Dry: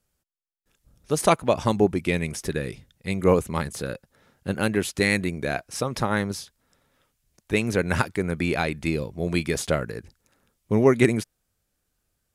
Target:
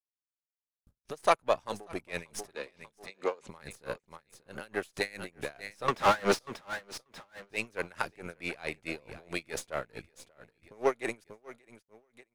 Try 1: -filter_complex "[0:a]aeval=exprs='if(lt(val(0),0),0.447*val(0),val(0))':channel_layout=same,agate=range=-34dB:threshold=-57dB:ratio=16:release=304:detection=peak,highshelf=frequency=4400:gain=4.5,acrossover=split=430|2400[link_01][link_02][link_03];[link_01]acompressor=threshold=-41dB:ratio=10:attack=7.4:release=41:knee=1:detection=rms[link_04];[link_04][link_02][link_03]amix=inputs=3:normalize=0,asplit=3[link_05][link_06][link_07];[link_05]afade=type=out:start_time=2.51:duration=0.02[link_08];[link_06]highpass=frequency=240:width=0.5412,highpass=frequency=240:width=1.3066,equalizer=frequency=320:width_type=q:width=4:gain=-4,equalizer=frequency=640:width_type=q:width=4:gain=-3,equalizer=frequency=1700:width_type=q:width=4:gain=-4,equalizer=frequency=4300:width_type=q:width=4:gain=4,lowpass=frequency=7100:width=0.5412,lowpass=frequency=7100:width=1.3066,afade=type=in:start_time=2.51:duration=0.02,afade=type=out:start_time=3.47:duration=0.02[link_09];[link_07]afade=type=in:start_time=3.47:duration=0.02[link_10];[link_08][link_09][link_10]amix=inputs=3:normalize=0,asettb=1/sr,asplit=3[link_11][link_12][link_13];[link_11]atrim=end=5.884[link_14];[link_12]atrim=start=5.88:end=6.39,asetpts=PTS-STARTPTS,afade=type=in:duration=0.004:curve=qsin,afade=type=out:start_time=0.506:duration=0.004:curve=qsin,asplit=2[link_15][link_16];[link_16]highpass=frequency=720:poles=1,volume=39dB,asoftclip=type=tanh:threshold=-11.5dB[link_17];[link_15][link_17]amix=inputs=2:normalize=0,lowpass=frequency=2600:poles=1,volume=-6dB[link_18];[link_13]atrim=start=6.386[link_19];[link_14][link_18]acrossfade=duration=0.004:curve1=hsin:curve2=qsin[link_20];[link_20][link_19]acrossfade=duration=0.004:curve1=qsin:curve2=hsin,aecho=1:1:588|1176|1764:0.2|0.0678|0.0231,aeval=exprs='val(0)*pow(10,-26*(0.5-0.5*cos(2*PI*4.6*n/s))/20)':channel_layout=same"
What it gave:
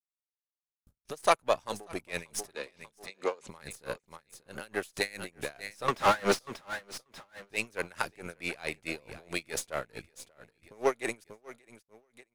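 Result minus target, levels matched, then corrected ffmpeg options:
8,000 Hz band +4.0 dB
-filter_complex "[0:a]aeval=exprs='if(lt(val(0),0),0.447*val(0),val(0))':channel_layout=same,agate=range=-34dB:threshold=-57dB:ratio=16:release=304:detection=peak,highshelf=frequency=4400:gain=-2.5,acrossover=split=430|2400[link_01][link_02][link_03];[link_01]acompressor=threshold=-41dB:ratio=10:attack=7.4:release=41:knee=1:detection=rms[link_04];[link_04][link_02][link_03]amix=inputs=3:normalize=0,asplit=3[link_05][link_06][link_07];[link_05]afade=type=out:start_time=2.51:duration=0.02[link_08];[link_06]highpass=frequency=240:width=0.5412,highpass=frequency=240:width=1.3066,equalizer=frequency=320:width_type=q:width=4:gain=-4,equalizer=frequency=640:width_type=q:width=4:gain=-3,equalizer=frequency=1700:width_type=q:width=4:gain=-4,equalizer=frequency=4300:width_type=q:width=4:gain=4,lowpass=frequency=7100:width=0.5412,lowpass=frequency=7100:width=1.3066,afade=type=in:start_time=2.51:duration=0.02,afade=type=out:start_time=3.47:duration=0.02[link_09];[link_07]afade=type=in:start_time=3.47:duration=0.02[link_10];[link_08][link_09][link_10]amix=inputs=3:normalize=0,asettb=1/sr,asplit=3[link_11][link_12][link_13];[link_11]atrim=end=5.884[link_14];[link_12]atrim=start=5.88:end=6.39,asetpts=PTS-STARTPTS,afade=type=in:duration=0.004:curve=qsin,afade=type=out:start_time=0.506:duration=0.004:curve=qsin,asplit=2[link_15][link_16];[link_16]highpass=frequency=720:poles=1,volume=39dB,asoftclip=type=tanh:threshold=-11.5dB[link_17];[link_15][link_17]amix=inputs=2:normalize=0,lowpass=frequency=2600:poles=1,volume=-6dB[link_18];[link_13]atrim=start=6.386[link_19];[link_14][link_18]acrossfade=duration=0.004:curve1=hsin:curve2=qsin[link_20];[link_20][link_19]acrossfade=duration=0.004:curve1=qsin:curve2=hsin,aecho=1:1:588|1176|1764:0.2|0.0678|0.0231,aeval=exprs='val(0)*pow(10,-26*(0.5-0.5*cos(2*PI*4.6*n/s))/20)':channel_layout=same"

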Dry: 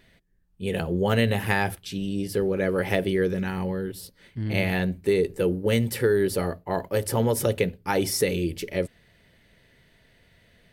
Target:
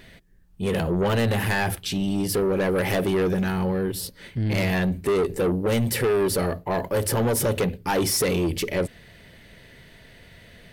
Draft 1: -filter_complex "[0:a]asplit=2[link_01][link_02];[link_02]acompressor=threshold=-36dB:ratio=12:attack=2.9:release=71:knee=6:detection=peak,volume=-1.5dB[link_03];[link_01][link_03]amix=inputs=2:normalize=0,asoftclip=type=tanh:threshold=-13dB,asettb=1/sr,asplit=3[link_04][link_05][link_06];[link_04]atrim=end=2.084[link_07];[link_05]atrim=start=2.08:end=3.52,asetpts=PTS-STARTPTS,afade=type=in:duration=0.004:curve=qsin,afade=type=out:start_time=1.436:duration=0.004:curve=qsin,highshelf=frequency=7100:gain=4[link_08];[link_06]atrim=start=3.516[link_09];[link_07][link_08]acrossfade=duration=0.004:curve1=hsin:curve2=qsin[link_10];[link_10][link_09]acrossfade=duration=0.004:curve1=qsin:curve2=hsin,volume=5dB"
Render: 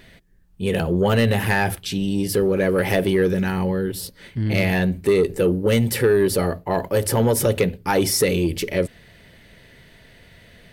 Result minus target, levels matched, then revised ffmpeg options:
soft clipping: distortion −10 dB
-filter_complex "[0:a]asplit=2[link_01][link_02];[link_02]acompressor=threshold=-36dB:ratio=12:attack=2.9:release=71:knee=6:detection=peak,volume=-1.5dB[link_03];[link_01][link_03]amix=inputs=2:normalize=0,asoftclip=type=tanh:threshold=-23dB,asettb=1/sr,asplit=3[link_04][link_05][link_06];[link_04]atrim=end=2.084[link_07];[link_05]atrim=start=2.08:end=3.52,asetpts=PTS-STARTPTS,afade=type=in:duration=0.004:curve=qsin,afade=type=out:start_time=1.436:duration=0.004:curve=qsin,highshelf=frequency=7100:gain=4[link_08];[link_06]atrim=start=3.516[link_09];[link_07][link_08]acrossfade=duration=0.004:curve1=hsin:curve2=qsin[link_10];[link_10][link_09]acrossfade=duration=0.004:curve1=qsin:curve2=hsin,volume=5dB"

